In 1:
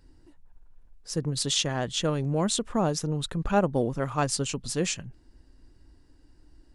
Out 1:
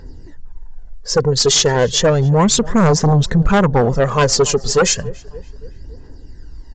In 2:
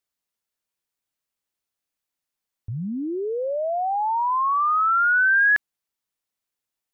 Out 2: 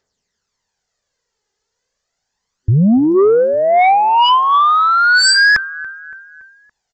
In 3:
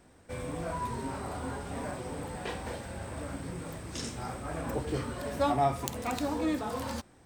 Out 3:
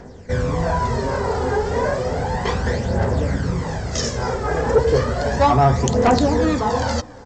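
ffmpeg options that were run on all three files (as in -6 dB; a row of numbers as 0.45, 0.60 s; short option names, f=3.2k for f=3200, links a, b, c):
-filter_complex "[0:a]aphaser=in_gain=1:out_gain=1:delay=2.5:decay=0.54:speed=0.33:type=triangular,superequalizer=6b=0.562:7b=1.58:10b=0.708:12b=0.447:13b=0.562,asplit=2[a][b];[b]adelay=283,lowpass=f=2.9k:p=1,volume=-22.5dB,asplit=2[c][d];[d]adelay=283,lowpass=f=2.9k:p=1,volume=0.53,asplit=2[e][f];[f]adelay=283,lowpass=f=2.9k:p=1,volume=0.53,asplit=2[g][h];[h]adelay=283,lowpass=f=2.9k:p=1,volume=0.53[i];[a][c][e][g][i]amix=inputs=5:normalize=0,aresample=16000,aeval=exprs='0.422*sin(PI/2*3.55*val(0)/0.422)':c=same,aresample=44100"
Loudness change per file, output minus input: +13.5, +10.0, +15.0 LU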